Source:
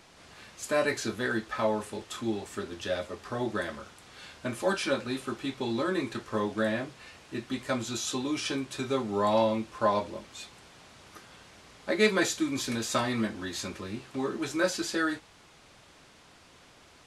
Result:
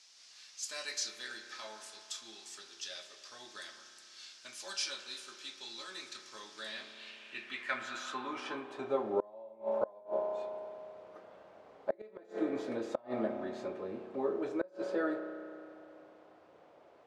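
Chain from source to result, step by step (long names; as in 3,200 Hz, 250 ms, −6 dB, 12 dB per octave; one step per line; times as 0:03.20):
spring reverb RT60 2.6 s, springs 32 ms, chirp 55 ms, DRR 7.5 dB
band-pass filter sweep 5,400 Hz → 570 Hz, 0:06.52–0:09.14
gate with flip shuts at −23 dBFS, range −29 dB
level +4.5 dB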